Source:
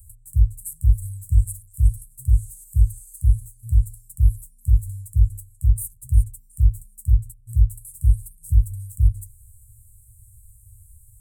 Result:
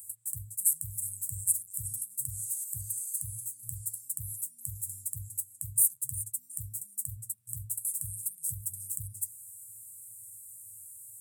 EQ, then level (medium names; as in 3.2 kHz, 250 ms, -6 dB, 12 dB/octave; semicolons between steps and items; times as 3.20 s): Bessel high-pass 330 Hz, order 4; +8.5 dB